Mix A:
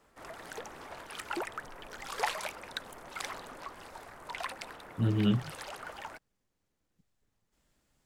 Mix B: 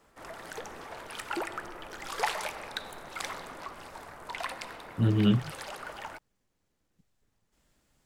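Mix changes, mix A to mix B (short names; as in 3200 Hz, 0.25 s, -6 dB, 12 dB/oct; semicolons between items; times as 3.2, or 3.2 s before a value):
speech +3.5 dB; reverb: on, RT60 2.7 s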